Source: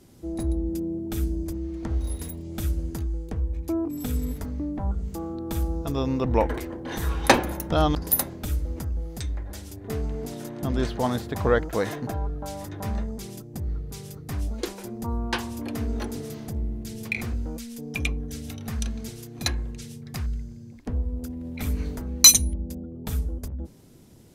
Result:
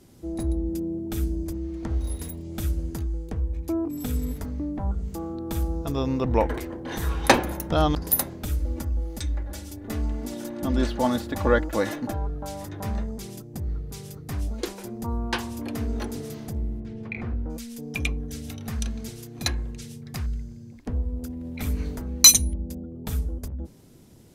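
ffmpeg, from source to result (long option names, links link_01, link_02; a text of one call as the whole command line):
ffmpeg -i in.wav -filter_complex "[0:a]asettb=1/sr,asplit=3[link_01][link_02][link_03];[link_01]atrim=end=8.604[link_04];[link_02]atrim=start=8.6:end=12.13,asetpts=PTS-STARTPTS,afade=type=in:duration=0.004:curve=qsin,afade=type=out:start_time=3.526:duration=0.004:curve=qsin,aecho=1:1:3.5:0.65,atrim=end_sample=155673[link_05];[link_03]atrim=start=12.126[link_06];[link_04][link_05]acrossfade=duration=0.004:curve1=hsin:curve2=qsin[link_07];[link_07][link_06]acrossfade=duration=0.004:curve1=qsin:curve2=hsin,asettb=1/sr,asplit=3[link_08][link_09][link_10];[link_08]atrim=end=16.804[link_11];[link_09]atrim=start=16.8:end=17.5,asetpts=PTS-STARTPTS,afade=type=in:duration=0.004:curve=qsin,afade=type=out:start_time=0.696:duration=0.004:curve=qsin,lowpass=1700[link_12];[link_10]atrim=start=17.496[link_13];[link_11][link_12]acrossfade=duration=0.004:curve1=hsin:curve2=qsin[link_14];[link_14][link_13]acrossfade=duration=0.004:curve1=qsin:curve2=hsin" out.wav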